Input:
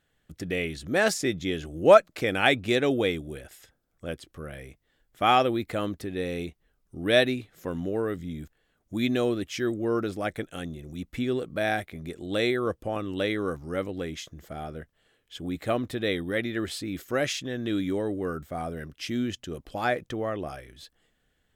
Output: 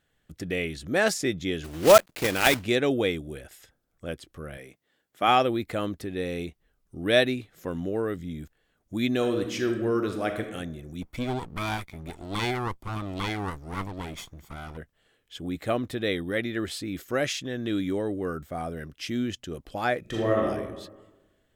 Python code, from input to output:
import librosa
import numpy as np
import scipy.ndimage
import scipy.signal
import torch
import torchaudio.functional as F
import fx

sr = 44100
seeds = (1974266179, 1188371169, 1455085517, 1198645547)

y = fx.block_float(x, sr, bits=3, at=(1.64, 2.64))
y = fx.highpass(y, sr, hz=180.0, slope=12, at=(4.57, 5.28))
y = fx.reverb_throw(y, sr, start_s=9.15, length_s=1.35, rt60_s=0.98, drr_db=5.0)
y = fx.lower_of_two(y, sr, delay_ms=0.88, at=(11.01, 14.76), fade=0.02)
y = fx.reverb_throw(y, sr, start_s=20.0, length_s=0.44, rt60_s=1.2, drr_db=-5.0)